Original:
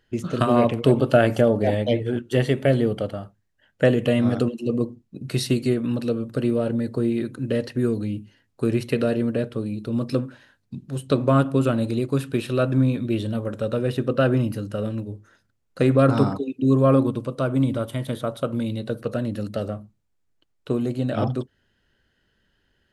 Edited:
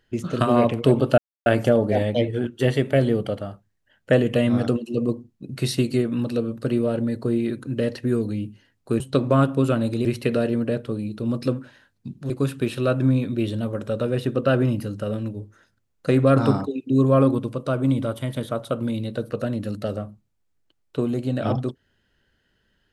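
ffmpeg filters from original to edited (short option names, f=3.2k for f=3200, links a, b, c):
-filter_complex "[0:a]asplit=5[a][b][c][d][e];[a]atrim=end=1.18,asetpts=PTS-STARTPTS,afade=t=out:st=1.176:d=0.004:c=hsin,apad=pad_dur=0.28[f];[b]atrim=start=1.18:end=8.722,asetpts=PTS-STARTPTS,afade=t=in:d=0.004:c=hsin[g];[c]atrim=start=10.968:end=12.022[h];[d]atrim=start=8.718:end=10.972[i];[e]atrim=start=12.018[j];[f][g]concat=n=2:v=0:a=1[k];[k][h]acrossfade=d=0.004:c1=hsin:c2=hsin[l];[l][i]acrossfade=d=0.004:c1=hsin:c2=hsin[m];[m][j]acrossfade=d=0.004:c1=hsin:c2=hsin"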